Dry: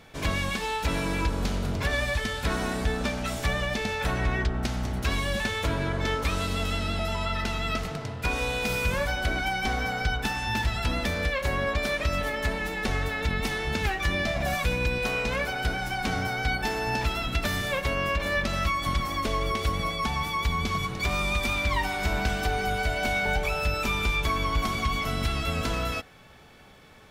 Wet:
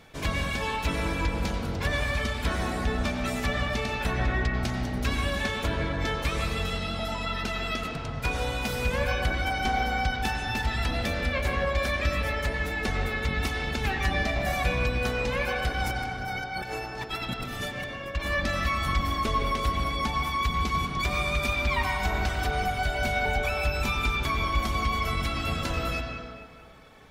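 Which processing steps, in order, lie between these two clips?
reverb removal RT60 0.89 s; 15.80–18.15 s: compressor with a negative ratio -35 dBFS, ratio -0.5; reverberation RT60 1.9 s, pre-delay 83 ms, DRR 1 dB; trim -1 dB

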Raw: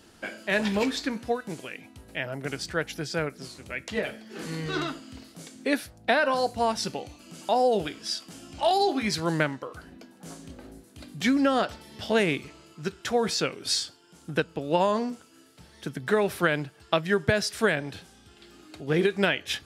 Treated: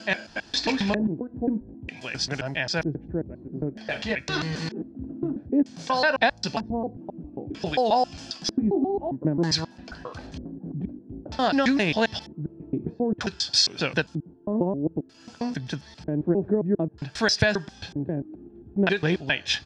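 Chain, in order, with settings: slices played last to first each 134 ms, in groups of 4; treble shelf 7 kHz -8 dB; comb 1.2 ms, depth 37%; in parallel at -3 dB: compression, threshold -34 dBFS, peak gain reduction 16 dB; on the sum: LFO low-pass square 0.53 Hz 340–5300 Hz; loudspeaker Doppler distortion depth 0.11 ms

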